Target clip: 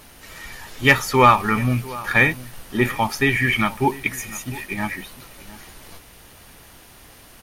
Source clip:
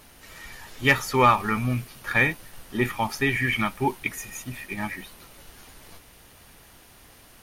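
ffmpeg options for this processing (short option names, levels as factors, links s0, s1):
-filter_complex "[0:a]asplit=2[s0][s1];[s1]adelay=699.7,volume=0.126,highshelf=f=4000:g=-15.7[s2];[s0][s2]amix=inputs=2:normalize=0,volume=1.78"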